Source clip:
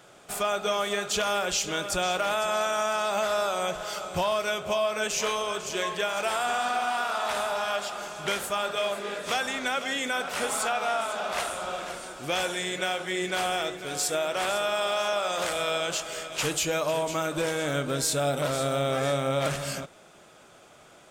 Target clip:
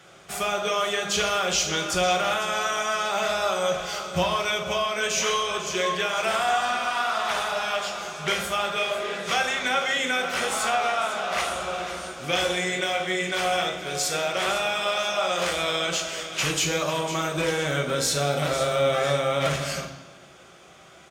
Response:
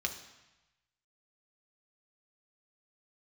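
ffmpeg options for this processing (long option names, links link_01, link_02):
-filter_complex "[0:a]asplit=2[link_01][link_02];[link_02]adelay=40,volume=-11.5dB[link_03];[link_01][link_03]amix=inputs=2:normalize=0[link_04];[1:a]atrim=start_sample=2205,asetrate=41013,aresample=44100[link_05];[link_04][link_05]afir=irnorm=-1:irlink=0"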